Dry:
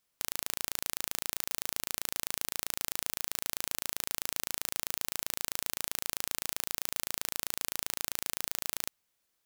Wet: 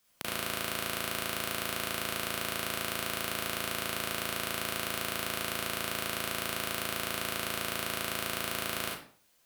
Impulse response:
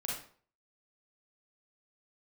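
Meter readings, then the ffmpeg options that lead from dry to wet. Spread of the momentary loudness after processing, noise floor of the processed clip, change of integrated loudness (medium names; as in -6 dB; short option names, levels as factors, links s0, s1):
0 LU, -68 dBFS, +1.0 dB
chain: -filter_complex "[0:a]acrossover=split=150|3200[s0][s1][s2];[s0]alimiter=level_in=44.7:limit=0.0631:level=0:latency=1,volume=0.0224[s3];[s3][s1][s2]amix=inputs=3:normalize=0,volume=18.8,asoftclip=hard,volume=0.0531[s4];[1:a]atrim=start_sample=2205[s5];[s4][s5]afir=irnorm=-1:irlink=0,volume=2.82"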